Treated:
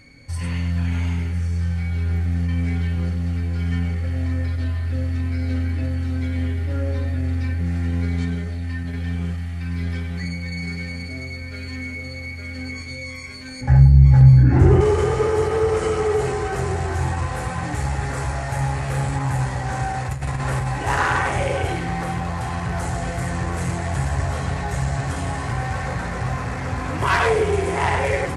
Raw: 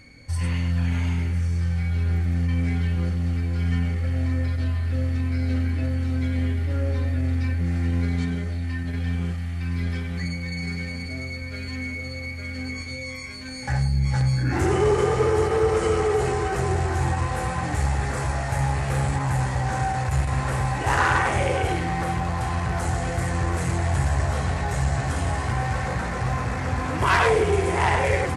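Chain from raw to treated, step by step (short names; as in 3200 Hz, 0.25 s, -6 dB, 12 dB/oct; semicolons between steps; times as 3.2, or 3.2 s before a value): 13.61–14.81 tilt -3.5 dB/oct; 20.08–20.69 negative-ratio compressor -24 dBFS, ratio -0.5; reverb RT60 0.65 s, pre-delay 7 ms, DRR 11.5 dB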